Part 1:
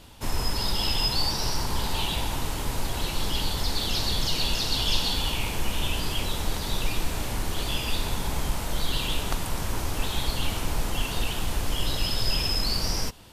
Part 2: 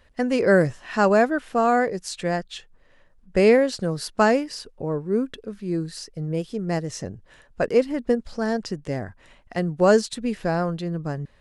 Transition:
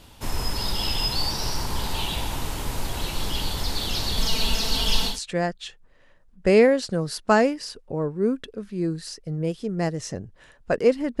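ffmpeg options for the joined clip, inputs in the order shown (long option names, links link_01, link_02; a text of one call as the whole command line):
ffmpeg -i cue0.wav -i cue1.wav -filter_complex "[0:a]asettb=1/sr,asplit=3[link_01][link_02][link_03];[link_01]atrim=end=4.174[link_04];[link_02]atrim=start=4.17:end=5.2,asetpts=PTS-STARTPTS,afade=type=in:duration=0.004:curve=qsin,afade=type=out:start_time=1.026:duration=0.004:curve=qsin,aecho=1:1:4.5:0.79,atrim=end_sample=45423[link_05];[link_03]atrim=start=5.196[link_06];[link_04][link_05]acrossfade=duration=0.004:curve1=hsin:curve2=qsin[link_07];[link_07][link_06]acrossfade=duration=0.004:curve1=qsin:curve2=hsin,apad=whole_dur=11.2,atrim=end=11.2,atrim=end=5.2,asetpts=PTS-STARTPTS[link_08];[1:a]atrim=start=1.94:end=8.1,asetpts=PTS-STARTPTS[link_09];[link_08][link_09]acrossfade=duration=0.16:curve1=tri:curve2=tri" out.wav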